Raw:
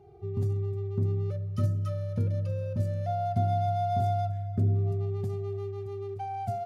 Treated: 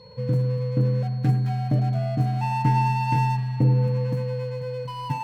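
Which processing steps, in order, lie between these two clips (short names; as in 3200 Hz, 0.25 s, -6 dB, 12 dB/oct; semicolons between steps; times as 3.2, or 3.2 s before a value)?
median filter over 41 samples; whine 3400 Hz -58 dBFS; varispeed +27%; on a send: band-limited delay 0.101 s, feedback 82%, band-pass 1300 Hz, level -12 dB; on the sum: gain +6.5 dB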